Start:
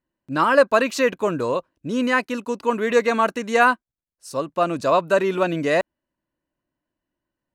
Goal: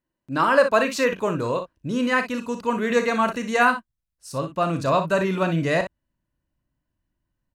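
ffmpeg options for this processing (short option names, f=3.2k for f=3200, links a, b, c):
-filter_complex "[0:a]asubboost=boost=5:cutoff=160,asplit=2[a][b];[b]aecho=0:1:37|59:0.299|0.316[c];[a][c]amix=inputs=2:normalize=0,volume=-1.5dB"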